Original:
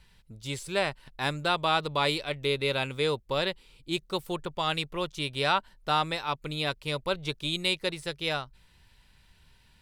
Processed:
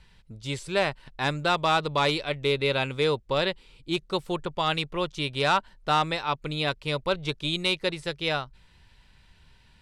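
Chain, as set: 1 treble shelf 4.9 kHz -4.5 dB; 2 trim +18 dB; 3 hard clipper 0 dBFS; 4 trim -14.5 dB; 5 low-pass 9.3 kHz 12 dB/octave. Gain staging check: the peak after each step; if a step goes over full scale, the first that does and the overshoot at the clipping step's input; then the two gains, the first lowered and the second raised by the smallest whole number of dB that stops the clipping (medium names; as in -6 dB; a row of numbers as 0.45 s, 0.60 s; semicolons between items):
-13.0 dBFS, +5.0 dBFS, 0.0 dBFS, -14.5 dBFS, -14.0 dBFS; step 2, 5.0 dB; step 2 +13 dB, step 4 -9.5 dB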